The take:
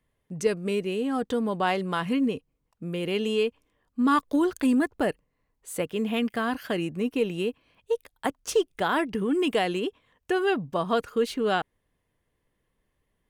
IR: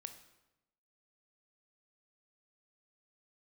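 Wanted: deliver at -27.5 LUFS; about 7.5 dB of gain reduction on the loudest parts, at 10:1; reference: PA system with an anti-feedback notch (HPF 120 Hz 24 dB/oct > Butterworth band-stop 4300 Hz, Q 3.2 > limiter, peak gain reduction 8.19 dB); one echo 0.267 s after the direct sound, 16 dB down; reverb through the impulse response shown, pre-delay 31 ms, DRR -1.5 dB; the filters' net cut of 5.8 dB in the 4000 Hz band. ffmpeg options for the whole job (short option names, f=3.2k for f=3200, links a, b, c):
-filter_complex "[0:a]equalizer=f=4k:t=o:g=-8.5,acompressor=threshold=-25dB:ratio=10,aecho=1:1:267:0.158,asplit=2[a][b];[1:a]atrim=start_sample=2205,adelay=31[c];[b][c]afir=irnorm=-1:irlink=0,volume=6dB[d];[a][d]amix=inputs=2:normalize=0,highpass=f=120:w=0.5412,highpass=f=120:w=1.3066,asuperstop=centerf=4300:order=8:qfactor=3.2,volume=2.5dB,alimiter=limit=-17.5dB:level=0:latency=1"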